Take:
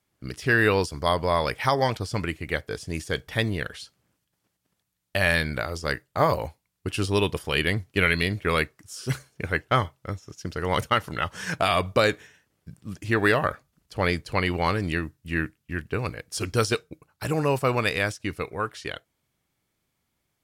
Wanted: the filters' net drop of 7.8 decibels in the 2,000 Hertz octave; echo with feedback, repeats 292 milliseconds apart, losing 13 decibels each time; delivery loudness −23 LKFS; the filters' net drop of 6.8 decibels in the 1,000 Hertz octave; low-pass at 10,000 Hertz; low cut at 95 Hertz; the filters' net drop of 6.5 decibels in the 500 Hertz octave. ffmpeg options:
ffmpeg -i in.wav -af "highpass=95,lowpass=10000,equalizer=frequency=500:width_type=o:gain=-6.5,equalizer=frequency=1000:width_type=o:gain=-4.5,equalizer=frequency=2000:width_type=o:gain=-8,aecho=1:1:292|584|876:0.224|0.0493|0.0108,volume=8dB" out.wav

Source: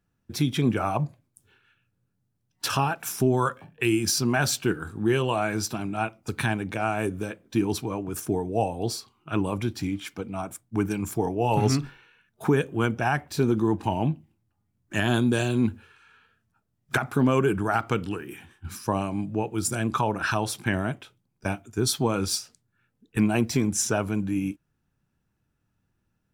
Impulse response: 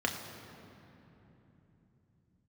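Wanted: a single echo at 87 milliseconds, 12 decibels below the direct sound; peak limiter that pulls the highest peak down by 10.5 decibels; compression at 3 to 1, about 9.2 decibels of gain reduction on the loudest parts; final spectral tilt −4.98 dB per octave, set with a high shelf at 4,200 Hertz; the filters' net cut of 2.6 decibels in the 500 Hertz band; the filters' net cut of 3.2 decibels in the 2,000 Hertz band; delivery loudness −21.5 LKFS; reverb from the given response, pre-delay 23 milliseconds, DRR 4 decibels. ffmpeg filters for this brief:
-filter_complex "[0:a]equalizer=frequency=500:width_type=o:gain=-3.5,equalizer=frequency=2000:width_type=o:gain=-5.5,highshelf=frequency=4200:gain=5,acompressor=threshold=-31dB:ratio=3,alimiter=level_in=2.5dB:limit=-24dB:level=0:latency=1,volume=-2.5dB,aecho=1:1:87:0.251,asplit=2[link_01][link_02];[1:a]atrim=start_sample=2205,adelay=23[link_03];[link_02][link_03]afir=irnorm=-1:irlink=0,volume=-12dB[link_04];[link_01][link_04]amix=inputs=2:normalize=0,volume=14dB"

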